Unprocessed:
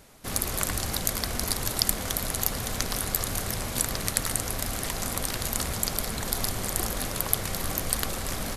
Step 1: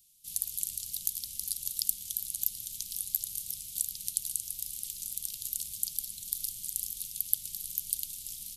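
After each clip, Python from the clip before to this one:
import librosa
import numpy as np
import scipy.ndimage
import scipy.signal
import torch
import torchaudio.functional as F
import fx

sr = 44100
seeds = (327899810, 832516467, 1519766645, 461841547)

y = scipy.signal.sosfilt(scipy.signal.ellip(3, 1.0, 50, [190.0, 3000.0], 'bandstop', fs=sr, output='sos'), x)
y = scipy.signal.lfilter([1.0, -0.9], [1.0], y)
y = F.gain(torch.from_numpy(y), -5.0).numpy()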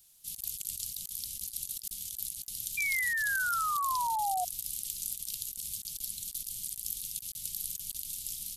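y = fx.over_compress(x, sr, threshold_db=-38.0, ratio=-0.5)
y = fx.quant_dither(y, sr, seeds[0], bits=12, dither='none')
y = fx.spec_paint(y, sr, seeds[1], shape='fall', start_s=2.77, length_s=1.68, low_hz=710.0, high_hz=2400.0, level_db=-31.0)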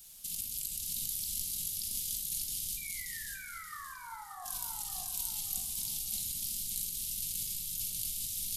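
y = fx.over_compress(x, sr, threshold_db=-44.0, ratio=-1.0)
y = fx.echo_feedback(y, sr, ms=579, feedback_pct=32, wet_db=-3.5)
y = fx.room_shoebox(y, sr, seeds[2], volume_m3=690.0, walls='mixed', distance_m=1.6)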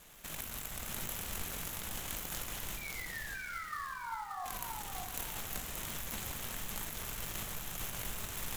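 y = scipy.ndimage.median_filter(x, 9, mode='constant')
y = F.gain(torch.from_numpy(y), 5.5).numpy()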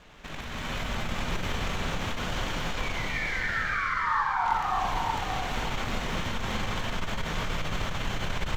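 y = fx.air_absorb(x, sr, metres=190.0)
y = fx.rev_gated(y, sr, seeds[3], gate_ms=440, shape='rising', drr_db=-6.0)
y = fx.transformer_sat(y, sr, knee_hz=50.0)
y = F.gain(torch.from_numpy(y), 8.5).numpy()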